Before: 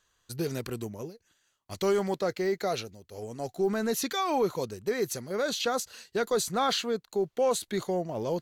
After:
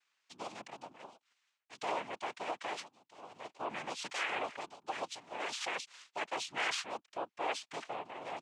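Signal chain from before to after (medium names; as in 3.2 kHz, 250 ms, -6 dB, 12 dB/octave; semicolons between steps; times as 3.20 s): noise-vocoded speech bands 4; band-pass filter 2.2 kHz, Q 0.71; trim -4 dB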